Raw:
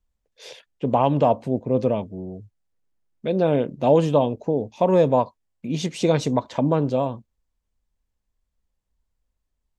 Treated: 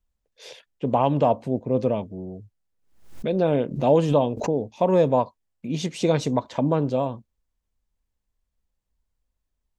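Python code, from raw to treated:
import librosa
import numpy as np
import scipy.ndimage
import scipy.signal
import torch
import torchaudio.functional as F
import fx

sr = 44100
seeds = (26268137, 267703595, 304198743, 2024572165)

y = fx.pre_swell(x, sr, db_per_s=96.0, at=(2.11, 4.72))
y = y * librosa.db_to_amplitude(-1.5)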